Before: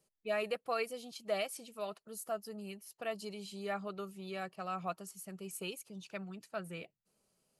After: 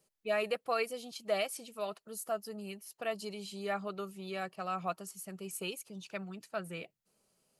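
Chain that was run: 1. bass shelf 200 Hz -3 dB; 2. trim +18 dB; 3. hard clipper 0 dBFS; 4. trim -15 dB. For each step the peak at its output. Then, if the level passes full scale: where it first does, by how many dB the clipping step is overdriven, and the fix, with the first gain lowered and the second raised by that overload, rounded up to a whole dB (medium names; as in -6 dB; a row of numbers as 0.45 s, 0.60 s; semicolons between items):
-24.0 dBFS, -6.0 dBFS, -6.0 dBFS, -21.0 dBFS; nothing clips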